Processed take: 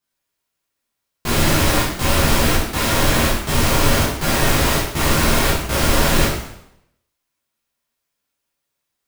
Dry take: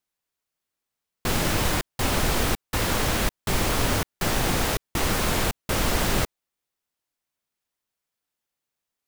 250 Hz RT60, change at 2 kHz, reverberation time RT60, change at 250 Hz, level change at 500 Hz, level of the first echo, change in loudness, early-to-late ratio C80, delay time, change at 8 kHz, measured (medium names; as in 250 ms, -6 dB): 0.75 s, +7.5 dB, 0.80 s, +8.0 dB, +7.5 dB, no echo, +7.5 dB, 5.5 dB, no echo, +7.0 dB